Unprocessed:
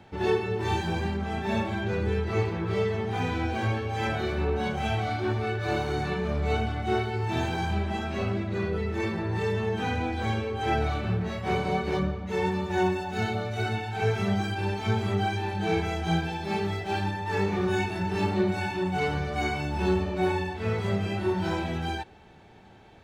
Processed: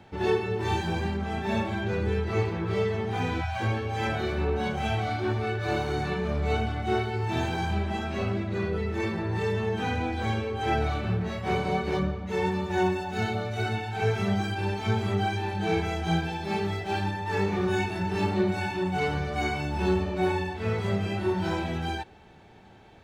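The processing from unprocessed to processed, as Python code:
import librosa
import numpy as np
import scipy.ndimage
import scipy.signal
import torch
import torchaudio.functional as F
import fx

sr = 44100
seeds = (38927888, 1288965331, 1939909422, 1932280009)

y = fx.spec_erase(x, sr, start_s=3.41, length_s=0.2, low_hz=210.0, high_hz=550.0)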